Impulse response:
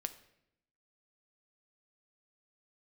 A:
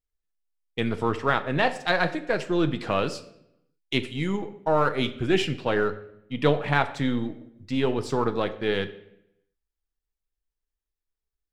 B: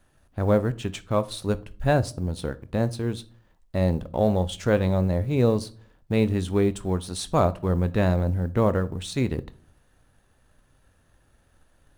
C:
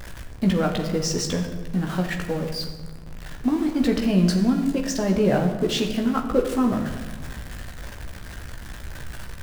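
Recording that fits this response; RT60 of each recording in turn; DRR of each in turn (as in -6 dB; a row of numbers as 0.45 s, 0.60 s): A; 0.80 s, 0.50 s, 1.5 s; 9.0 dB, 14.5 dB, 1.5 dB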